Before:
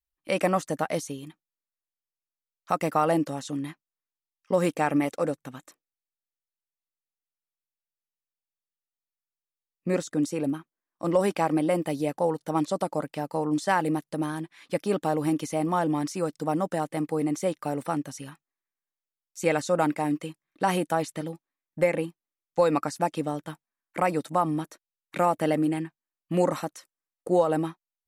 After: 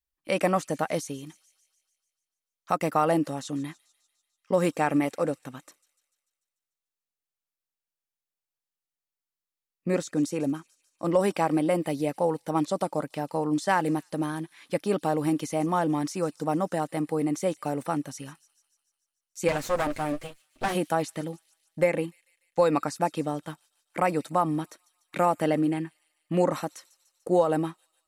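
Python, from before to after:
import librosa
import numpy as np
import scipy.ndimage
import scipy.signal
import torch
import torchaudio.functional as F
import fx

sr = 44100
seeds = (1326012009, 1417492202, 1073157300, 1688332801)

y = fx.lower_of_two(x, sr, delay_ms=7.9, at=(19.47, 20.74), fade=0.02)
y = fx.high_shelf(y, sr, hz=8500.0, db=-8.0, at=(25.46, 26.54))
y = fx.echo_wet_highpass(y, sr, ms=147, feedback_pct=61, hz=4200.0, wet_db=-16.5)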